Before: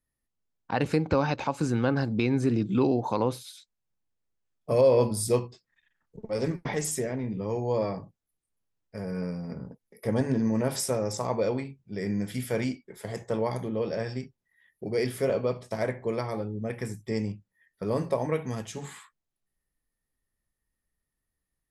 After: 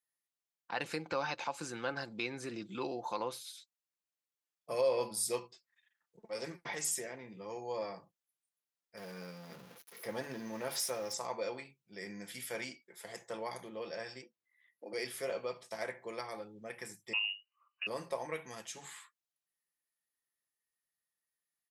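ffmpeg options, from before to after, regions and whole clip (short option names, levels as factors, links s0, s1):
-filter_complex "[0:a]asettb=1/sr,asplit=3[s0][s1][s2];[s0]atrim=end=8.974[s3];[s1]atrim=start=8.97:end=11.14,asetpts=PTS-STARTPTS,afade=t=in:d=0.004:c=qsin,afade=t=out:st=2.166:d=0.004:c=qsin,aeval=exprs='val(0)+0.5*0.00891*sgn(val(0))':c=same,equalizer=f=7900:w=3.7:g=-9[s4];[s2]atrim=start=11.136[s5];[s3][s4]acrossfade=d=0.004:c1=hsin:c2=qsin[s6];[s6][s5]acrossfade=d=0.004:c1=qsin:c2=hsin,asettb=1/sr,asplit=3[s7][s8][s9];[s7]atrim=end=14.224[s10];[s8]atrim=start=14.22:end=14.93,asetpts=PTS-STARTPTS,afade=t=in:d=0.004:c=qsin,afade=t=out:st=0.706:d=0.004:c=qsin,highshelf=f=4300:g=-8,afreqshift=100[s11];[s9]atrim=start=14.926[s12];[s10][s11]acrossfade=d=0.004:c1=hsin:c2=qsin[s13];[s13][s12]acrossfade=d=0.004:c1=qsin:c2=hsin,asettb=1/sr,asplit=3[s14][s15][s16];[s14]atrim=end=17.134[s17];[s15]atrim=start=17.13:end=17.87,asetpts=PTS-STARTPTS,afade=t=in:d=0.004:c=qsin,afade=t=out:st=0.736:d=0.004:c=qsin,equalizer=f=130:t=o:w=1.4:g=-4.5,lowpass=f=2600:t=q:w=0.5098,lowpass=f=2600:t=q:w=0.6013,lowpass=f=2600:t=q:w=0.9,lowpass=f=2600:t=q:w=2.563,afreqshift=-3000[s18];[s16]atrim=start=17.866[s19];[s17][s18]acrossfade=d=0.004:c1=hsin:c2=qsin[s20];[s20][s19]acrossfade=d=0.004:c1=qsin:c2=hsin,highpass=f=1400:p=1,aecho=1:1:5.8:0.35,volume=0.708"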